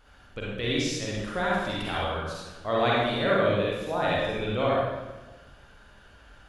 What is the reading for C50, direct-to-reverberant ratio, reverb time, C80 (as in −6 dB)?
−3.5 dB, −6.0 dB, 1.2 s, 0.5 dB